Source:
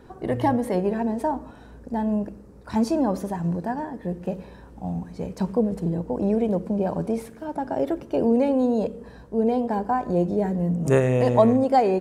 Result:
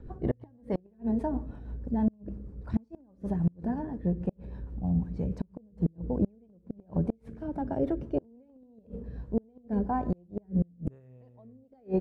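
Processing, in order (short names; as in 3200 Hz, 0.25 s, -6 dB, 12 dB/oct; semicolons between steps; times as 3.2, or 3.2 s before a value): RIAA curve playback; flipped gate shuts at -9 dBFS, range -34 dB; rotary speaker horn 6.3 Hz, later 1 Hz, at 8.48; gain -6 dB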